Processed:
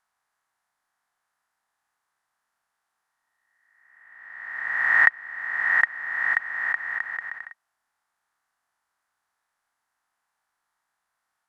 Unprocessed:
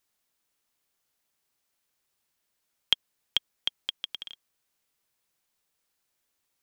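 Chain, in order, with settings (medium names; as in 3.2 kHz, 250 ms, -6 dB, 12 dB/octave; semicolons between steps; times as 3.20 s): reverse spectral sustain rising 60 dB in 0.92 s; high-order bell 2 kHz +15 dB; speed mistake 78 rpm record played at 45 rpm; trim -10 dB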